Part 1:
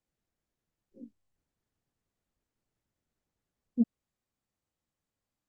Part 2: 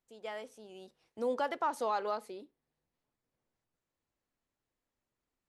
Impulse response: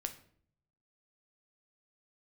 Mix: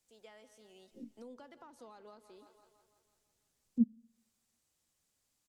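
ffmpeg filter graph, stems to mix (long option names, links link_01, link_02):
-filter_complex "[0:a]volume=0dB,asplit=2[link_01][link_02];[link_02]volume=-18.5dB[link_03];[1:a]highshelf=frequency=5000:gain=-8.5,volume=-9.5dB,asplit=2[link_04][link_05];[link_05]volume=-18dB[link_06];[2:a]atrim=start_sample=2205[link_07];[link_03][link_07]afir=irnorm=-1:irlink=0[link_08];[link_06]aecho=0:1:167|334|501|668|835|1002|1169|1336|1503:1|0.57|0.325|0.185|0.106|0.0602|0.0343|0.0195|0.0111[link_09];[link_01][link_04][link_08][link_09]amix=inputs=4:normalize=0,equalizer=frequency=8300:width=0.36:gain=13.5,acrossover=split=290[link_10][link_11];[link_11]acompressor=threshold=-54dB:ratio=10[link_12];[link_10][link_12]amix=inputs=2:normalize=0"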